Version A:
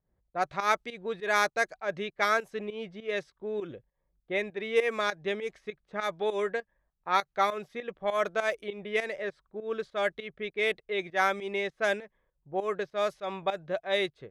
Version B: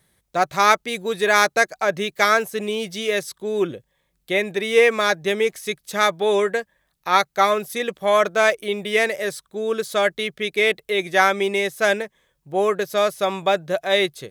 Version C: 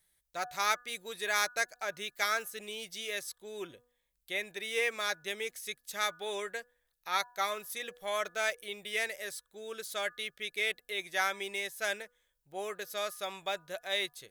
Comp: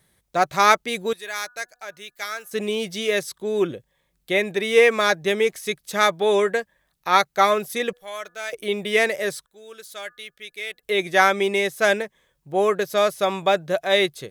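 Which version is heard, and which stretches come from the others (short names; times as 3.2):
B
1.13–2.51 from C
7.93–8.53 from C
9.46–10.83 from C
not used: A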